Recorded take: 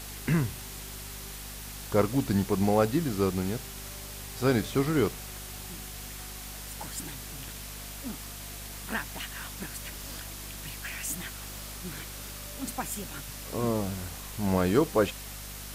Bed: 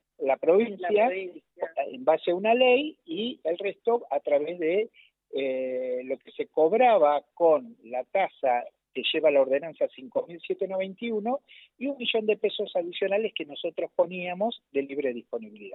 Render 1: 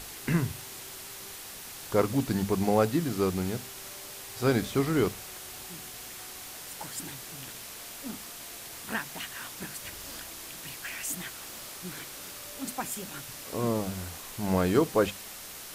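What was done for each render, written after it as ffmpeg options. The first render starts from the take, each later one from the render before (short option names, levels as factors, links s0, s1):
-af "bandreject=f=50:t=h:w=6,bandreject=f=100:t=h:w=6,bandreject=f=150:t=h:w=6,bandreject=f=200:t=h:w=6,bandreject=f=250:t=h:w=6"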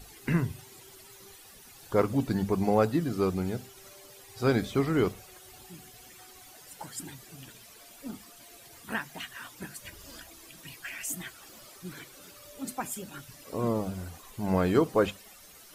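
-af "afftdn=nr=13:nf=-43"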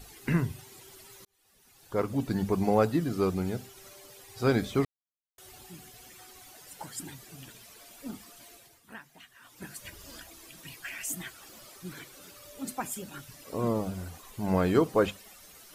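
-filter_complex "[0:a]asplit=6[s0][s1][s2][s3][s4][s5];[s0]atrim=end=1.25,asetpts=PTS-STARTPTS,afade=t=out:st=1.246:d=0.004:c=hsin[s6];[s1]atrim=start=1.25:end=4.85,asetpts=PTS-STARTPTS,afade=t=in:d=1.23,afade=t=out:st=3.596:d=0.004:c=hsin[s7];[s2]atrim=start=4.85:end=5.38,asetpts=PTS-STARTPTS,volume=0[s8];[s3]atrim=start=5.38:end=8.8,asetpts=PTS-STARTPTS,afade=t=in:d=0.004:c=hsin,afade=t=out:st=3.09:d=0.33:silence=0.223872[s9];[s4]atrim=start=8.8:end=9.41,asetpts=PTS-STARTPTS,volume=0.224[s10];[s5]atrim=start=9.41,asetpts=PTS-STARTPTS,afade=t=in:d=0.33:silence=0.223872[s11];[s6][s7][s8][s9][s10][s11]concat=n=6:v=0:a=1"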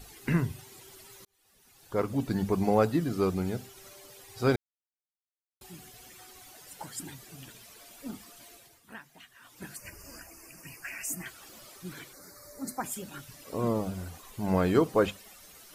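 -filter_complex "[0:a]asettb=1/sr,asplit=3[s0][s1][s2];[s0]atrim=end=9.764[s3];[s1]atrim=start=9.76:end=11.26,asetpts=PTS-STARTPTS,afade=t=in:d=0.004:c=qsin,afade=t=out:st=1.496:d=0.004:c=qsin,asuperstop=centerf=3600:order=8:qfactor=2[s4];[s2]atrim=start=11.256[s5];[s3][s4]acrossfade=d=0.004:c1=hsin:c2=qsin[s6];[s6][s5]acrossfade=d=0.004:c1=qsin:c2=hsin,asettb=1/sr,asplit=3[s7][s8][s9];[s7]atrim=end=12.134[s10];[s8]atrim=start=12.13:end=12.84,asetpts=PTS-STARTPTS,afade=t=in:d=0.004:c=qsin,afade=t=out:st=0.706:d=0.004:c=qsin,asuperstop=centerf=3000:order=8:qfactor=1.6[s11];[s9]atrim=start=12.836[s12];[s10][s11]acrossfade=d=0.004:c1=hsin:c2=qsin[s13];[s13][s12]acrossfade=d=0.004:c1=qsin:c2=hsin,asplit=3[s14][s15][s16];[s14]atrim=end=4.56,asetpts=PTS-STARTPTS,afade=t=out:st=4.556:d=0.004:c=hsin[s17];[s15]atrim=start=4.56:end=5.61,asetpts=PTS-STARTPTS,volume=0[s18];[s16]atrim=start=5.61,asetpts=PTS-STARTPTS,afade=t=in:d=0.004:c=hsin[s19];[s17][s18][s19]concat=n=3:v=0:a=1"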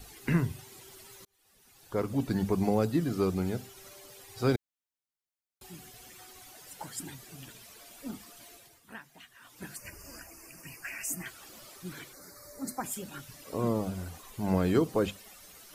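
-filter_complex "[0:a]acrossover=split=410|3000[s0][s1][s2];[s1]acompressor=threshold=0.0282:ratio=6[s3];[s0][s3][s2]amix=inputs=3:normalize=0"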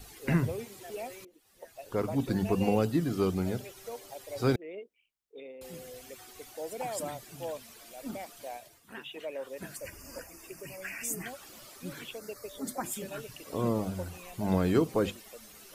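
-filter_complex "[1:a]volume=0.133[s0];[0:a][s0]amix=inputs=2:normalize=0"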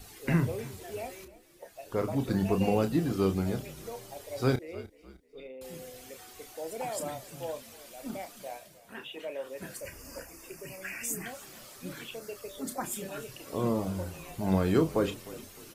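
-filter_complex "[0:a]asplit=2[s0][s1];[s1]adelay=31,volume=0.355[s2];[s0][s2]amix=inputs=2:normalize=0,asplit=4[s3][s4][s5][s6];[s4]adelay=305,afreqshift=-33,volume=0.119[s7];[s5]adelay=610,afreqshift=-66,volume=0.049[s8];[s6]adelay=915,afreqshift=-99,volume=0.02[s9];[s3][s7][s8][s9]amix=inputs=4:normalize=0"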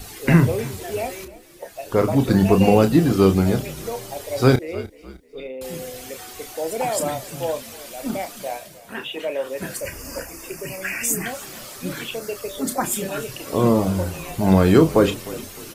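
-af "volume=3.98,alimiter=limit=0.708:level=0:latency=1"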